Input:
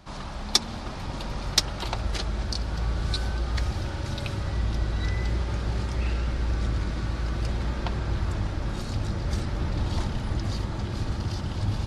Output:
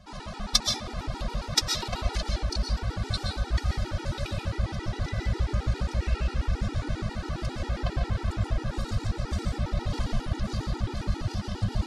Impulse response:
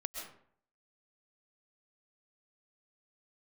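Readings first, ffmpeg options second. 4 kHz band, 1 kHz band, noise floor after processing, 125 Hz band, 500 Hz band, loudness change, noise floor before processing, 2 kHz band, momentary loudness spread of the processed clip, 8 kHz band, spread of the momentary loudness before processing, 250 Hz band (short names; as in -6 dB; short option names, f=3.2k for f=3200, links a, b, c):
-0.5 dB, -0.5 dB, -40 dBFS, -1.5 dB, 0.0 dB, -1.0 dB, -34 dBFS, -1.0 dB, 6 LU, -0.5 dB, 7 LU, -1.0 dB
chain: -filter_complex "[1:a]atrim=start_sample=2205[a];[0:a][a]afir=irnorm=-1:irlink=0,afftfilt=real='re*gt(sin(2*PI*7.4*pts/sr)*(1-2*mod(floor(b*sr/1024/250),2)),0)':imag='im*gt(sin(2*PI*7.4*pts/sr)*(1-2*mod(floor(b*sr/1024/250),2)),0)':win_size=1024:overlap=0.75,volume=3dB"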